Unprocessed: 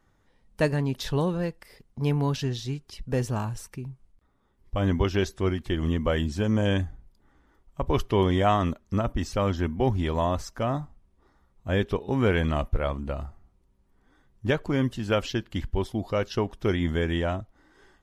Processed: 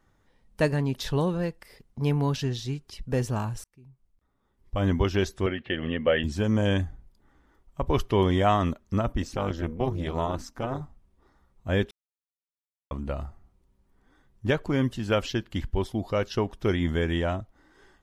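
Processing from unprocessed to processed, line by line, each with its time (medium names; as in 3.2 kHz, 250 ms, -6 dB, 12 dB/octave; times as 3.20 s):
3.64–4.85 s: fade in
5.46–6.24 s: cabinet simulation 150–3300 Hz, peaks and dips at 180 Hz -4 dB, 330 Hz -5 dB, 530 Hz +7 dB, 1 kHz -8 dB, 1.8 kHz +7 dB, 2.8 kHz +9 dB
9.22–10.81 s: AM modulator 250 Hz, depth 75%
11.91–12.91 s: mute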